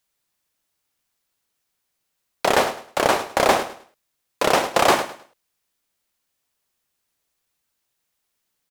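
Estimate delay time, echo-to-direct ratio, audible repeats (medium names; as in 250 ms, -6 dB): 104 ms, -12.5 dB, 2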